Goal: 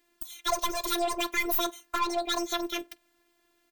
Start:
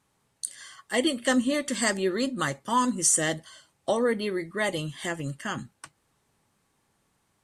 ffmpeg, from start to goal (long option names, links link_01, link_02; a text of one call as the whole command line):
ffmpeg -i in.wav -filter_complex "[0:a]asplit=2[link_01][link_02];[link_02]adelay=93,lowpass=frequency=870:poles=1,volume=-21.5dB,asplit=2[link_03][link_04];[link_04]adelay=93,lowpass=frequency=870:poles=1,volume=0.41,asplit=2[link_05][link_06];[link_06]adelay=93,lowpass=frequency=870:poles=1,volume=0.41[link_07];[link_01][link_03][link_05][link_07]amix=inputs=4:normalize=0,aeval=exprs='(tanh(17.8*val(0)+0.3)-tanh(0.3))/17.8':channel_layout=same,afftfilt=real='hypot(re,im)*cos(PI*b)':imag='0':win_size=1024:overlap=0.75,asetrate=88200,aresample=44100,volume=5.5dB" out.wav